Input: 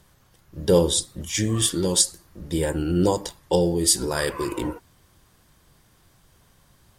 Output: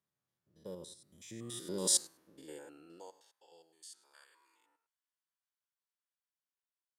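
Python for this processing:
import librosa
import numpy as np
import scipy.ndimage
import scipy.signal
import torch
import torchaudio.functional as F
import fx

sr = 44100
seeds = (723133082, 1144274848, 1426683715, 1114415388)

y = fx.spec_steps(x, sr, hold_ms=100)
y = fx.doppler_pass(y, sr, speed_mps=17, closest_m=1.4, pass_at_s=1.99)
y = fx.filter_sweep_highpass(y, sr, from_hz=140.0, to_hz=1200.0, start_s=1.27, end_s=3.86, q=0.91)
y = F.gain(torch.from_numpy(y), -3.5).numpy()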